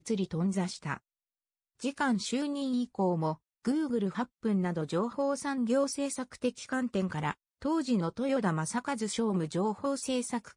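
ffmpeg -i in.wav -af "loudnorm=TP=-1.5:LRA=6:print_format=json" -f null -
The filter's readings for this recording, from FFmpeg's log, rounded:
"input_i" : "-31.9",
"input_tp" : "-16.2",
"input_lra" : "1.6",
"input_thresh" : "-41.9",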